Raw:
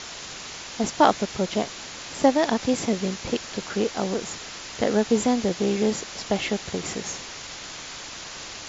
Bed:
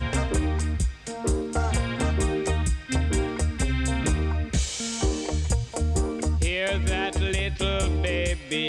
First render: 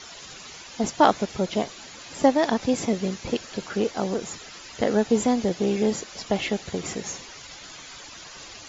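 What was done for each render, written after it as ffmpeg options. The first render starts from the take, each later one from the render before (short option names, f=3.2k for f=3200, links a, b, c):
-af "afftdn=nr=10:nf=-38"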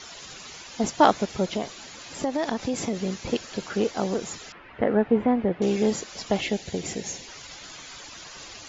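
-filter_complex "[0:a]asettb=1/sr,asplit=3[a][b][c];[a]atrim=end=1.524[d];[b]atrim=start=1.52:end=3.16,asetpts=PTS-STARTPTS,afade=t=in:d=0.004:c=qsin,afade=t=out:st=1.636:d=0.004:c=qsin,acompressor=threshold=-22dB:ratio=6:attack=3.2:release=140:knee=1:detection=peak[e];[c]atrim=start=3.156[f];[d][e]acrossfade=d=0.004:c1=hsin:c2=qsin[g];[g][f]acrossfade=d=0.004:c1=qsin:c2=hsin,asettb=1/sr,asplit=3[h][i][j];[h]atrim=end=4.524[k];[i]atrim=start=4.52:end=5.62,asetpts=PTS-STARTPTS,afade=t=in:d=0.004:c=qsin,afade=t=out:st=1.096:d=0.004:c=qsin,lowpass=f=2.3k:w=0.5412,lowpass=f=2.3k:w=1.3066[l];[j]atrim=start=5.616[m];[k][l]acrossfade=d=0.004:c1=hsin:c2=qsin[n];[n][m]acrossfade=d=0.004:c1=qsin:c2=hsin,asettb=1/sr,asplit=3[o][p][q];[o]atrim=end=6.414[r];[p]atrim=start=6.41:end=7.28,asetpts=PTS-STARTPTS,afade=t=in:d=0.004:c=qsin,afade=t=out:st=0.866:d=0.004:c=qsin,equalizer=f=1.2k:w=2.4:g=-11[s];[q]atrim=start=7.276[t];[r][s]acrossfade=d=0.004:c1=hsin:c2=qsin[u];[u][t]acrossfade=d=0.004:c1=qsin:c2=hsin"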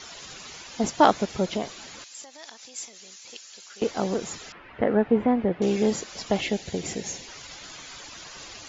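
-filter_complex "[0:a]asettb=1/sr,asplit=3[a][b][c];[a]atrim=end=2.044[d];[b]atrim=start=2.04:end=3.82,asetpts=PTS-STARTPTS,afade=t=in:d=0.004:c=qsin,afade=t=out:st=1.776:d=0.004:c=qsin,aderivative[e];[c]atrim=start=3.816[f];[d][e]acrossfade=d=0.004:c1=hsin:c2=qsin[g];[g][f]acrossfade=d=0.004:c1=qsin:c2=hsin"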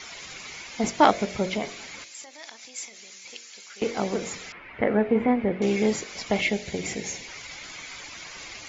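-af "equalizer=f=2.2k:w=4.7:g=10.5,bandreject=f=46.78:t=h:w=4,bandreject=f=93.56:t=h:w=4,bandreject=f=140.34:t=h:w=4,bandreject=f=187.12:t=h:w=4,bandreject=f=233.9:t=h:w=4,bandreject=f=280.68:t=h:w=4,bandreject=f=327.46:t=h:w=4,bandreject=f=374.24:t=h:w=4,bandreject=f=421.02:t=h:w=4,bandreject=f=467.8:t=h:w=4,bandreject=f=514.58:t=h:w=4,bandreject=f=561.36:t=h:w=4,bandreject=f=608.14:t=h:w=4,bandreject=f=654.92:t=h:w=4,bandreject=f=701.7:t=h:w=4"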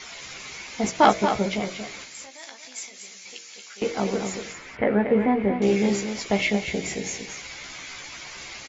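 -filter_complex "[0:a]asplit=2[a][b];[b]adelay=15,volume=-6.5dB[c];[a][c]amix=inputs=2:normalize=0,asplit=2[d][e];[e]aecho=0:1:232:0.398[f];[d][f]amix=inputs=2:normalize=0"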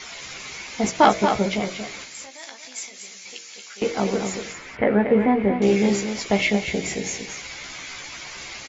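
-af "volume=2.5dB,alimiter=limit=-3dB:level=0:latency=1"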